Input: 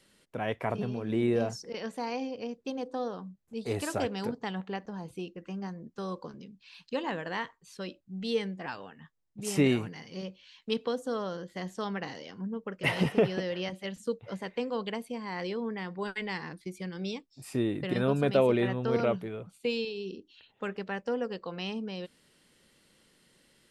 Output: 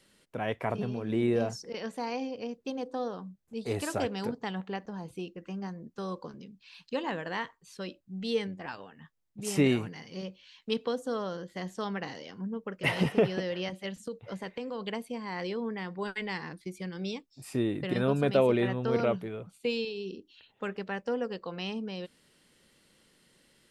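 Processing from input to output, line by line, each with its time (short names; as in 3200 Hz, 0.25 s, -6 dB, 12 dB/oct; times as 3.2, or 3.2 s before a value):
8.47–8.98 AM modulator 87 Hz, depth 25%
13.94–14.87 compressor, threshold -32 dBFS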